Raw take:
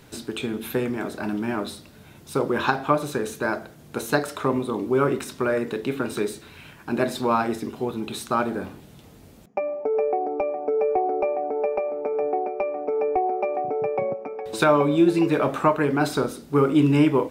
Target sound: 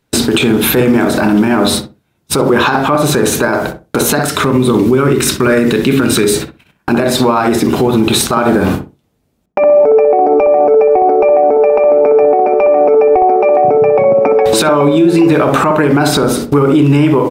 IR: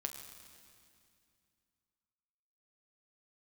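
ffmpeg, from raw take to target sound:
-filter_complex "[0:a]agate=range=0.00708:threshold=0.0112:ratio=16:detection=peak,asettb=1/sr,asplit=3[s0][s1][s2];[s0]atrim=end=4.234[s3];[s1]atrim=start=4.23:end=6.34,asetpts=PTS-STARTPTS,afade=t=in:d=0.004:c=qsin,afade=t=out:st=2.106:d=0.004:c=qsin,equalizer=f=740:t=o:w=1.5:g=-9[s4];[s2]atrim=start=6.336[s5];[s3][s4]acrossfade=d=0.004:c1=hsin:c2=qsin[s6];[s6][s5]acrossfade=d=0.004:c1=qsin:c2=hsin,acompressor=threshold=0.0251:ratio=6,asplit=2[s7][s8];[s8]adelay=63,lowpass=f=980:p=1,volume=0.473,asplit=2[s9][s10];[s10]adelay=63,lowpass=f=980:p=1,volume=0.23,asplit=2[s11][s12];[s12]adelay=63,lowpass=f=980:p=1,volume=0.23[s13];[s7][s9][s11][s13]amix=inputs=4:normalize=0,alimiter=level_in=29.9:limit=0.891:release=50:level=0:latency=1,volume=0.891"

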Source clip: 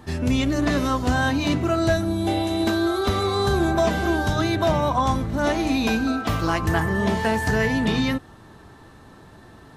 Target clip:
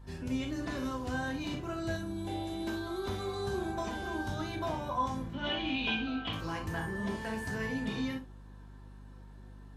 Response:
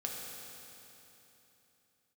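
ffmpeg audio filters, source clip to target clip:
-filter_complex "[0:a]asettb=1/sr,asplit=3[s0][s1][s2];[s0]atrim=end=5.334[s3];[s1]atrim=start=5.33:end=6.33,asetpts=PTS-STARTPTS,afade=t=in:d=0.004:c=qsin,afade=t=out:st=0.996:d=0.004:c=qsin,lowpass=f=3100:t=q:w=9.5[s4];[s2]atrim=start=6.326[s5];[s3][s4]acrossfade=d=0.004:c1=hsin:c2=qsin[s6];[s6][s5]acrossfade=d=0.004:c1=qsin:c2=hsin[s7];[1:a]atrim=start_sample=2205,atrim=end_sample=6615,asetrate=88200,aresample=44100[s8];[s7][s8]afir=irnorm=-1:irlink=0,aeval=exprs='val(0)+0.00891*(sin(2*PI*50*n/s)+sin(2*PI*2*50*n/s)/2+sin(2*PI*3*50*n/s)/3+sin(2*PI*4*50*n/s)/4+sin(2*PI*5*50*n/s)/5)':c=same,volume=0.398"

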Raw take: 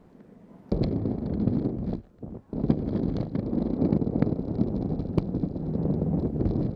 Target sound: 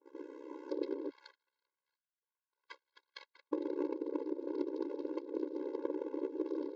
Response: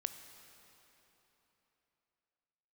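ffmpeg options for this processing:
-filter_complex "[0:a]asettb=1/sr,asplit=3[s0][s1][s2];[s0]atrim=end=1.104[s3];[s1]atrim=start=1.1:end=3.53,asetpts=PTS-STARTPTS,afade=t=in:d=0.004:c=qsin,afade=t=out:st=2.426:d=0.004:c=qsin,highpass=f=1300:w=0.5412,highpass=f=1300:w=1.3066[s4];[s2]atrim=start=3.526[s5];[s3][s4]acrossfade=d=0.004:c1=hsin:c2=qsin[s6];[s6][s5]acrossfade=d=0.004:c1=qsin:c2=hsin,agate=range=0.02:threshold=0.00251:ratio=16:detection=peak,adynamicequalizer=threshold=0.00251:dfrequency=3500:dqfactor=0.84:tfrequency=3500:tqfactor=0.84:attack=5:release=100:ratio=0.375:range=1.5:mode=boostabove:tftype=bell,acompressor=threshold=0.0158:ratio=8,tremolo=f=66:d=0.974,aeval=exprs='clip(val(0),-1,0.01)':c=same,aresample=16000,aresample=44100,afftfilt=real='re*eq(mod(floor(b*sr/1024/280),2),1)':imag='im*eq(mod(floor(b*sr/1024/280),2),1)':win_size=1024:overlap=0.75,volume=4.47"

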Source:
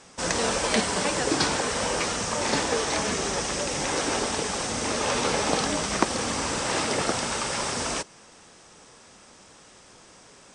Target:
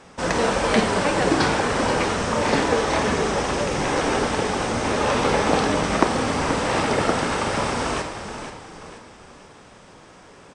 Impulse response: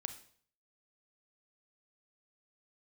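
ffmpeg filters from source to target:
-filter_complex "[0:a]equalizer=f=7500:t=o:w=2:g=-12,asplit=2[s0][s1];[s1]volume=5.31,asoftclip=hard,volume=0.188,volume=0.531[s2];[s0][s2]amix=inputs=2:normalize=0,asplit=5[s3][s4][s5][s6][s7];[s4]adelay=480,afreqshift=-34,volume=0.355[s8];[s5]adelay=960,afreqshift=-68,volume=0.141[s9];[s6]adelay=1440,afreqshift=-102,volume=0.0569[s10];[s7]adelay=1920,afreqshift=-136,volume=0.0226[s11];[s3][s8][s9][s10][s11]amix=inputs=5:normalize=0[s12];[1:a]atrim=start_sample=2205[s13];[s12][s13]afir=irnorm=-1:irlink=0,asettb=1/sr,asplit=3[s14][s15][s16];[s14]atrim=end=3.584[s17];[s15]atrim=start=3.58:end=4.17,asetpts=PTS-STARTPTS,afade=t=in:d=0.004:c=qsin,afade=t=out:st=0.586:d=0.004:c=qsin,aeval=exprs='0.2*(cos(1*acos(clip(val(0)/0.2,-1,1)))-cos(1*PI/2))+0.0141*(cos(2*acos(clip(val(0)/0.2,-1,1)))-cos(2*PI/2))':c=same[s18];[s16]atrim=start=4.166[s19];[s17][s18]acrossfade=d=0.004:c1=hsin:c2=qsin[s20];[s20][s19]acrossfade=d=0.004:c1=qsin:c2=hsin,volume=1.68"

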